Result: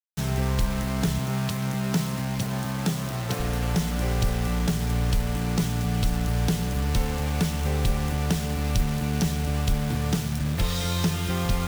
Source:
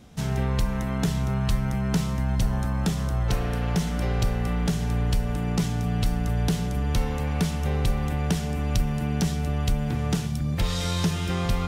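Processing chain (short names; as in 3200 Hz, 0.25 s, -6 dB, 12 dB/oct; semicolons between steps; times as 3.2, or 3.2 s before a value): 1.19–3.4 HPF 110 Hz 24 dB/oct; bit-crush 6-bit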